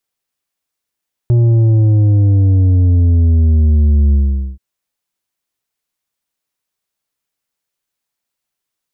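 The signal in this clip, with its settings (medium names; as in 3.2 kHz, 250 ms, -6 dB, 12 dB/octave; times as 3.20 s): sub drop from 120 Hz, over 3.28 s, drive 7 dB, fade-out 0.45 s, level -8 dB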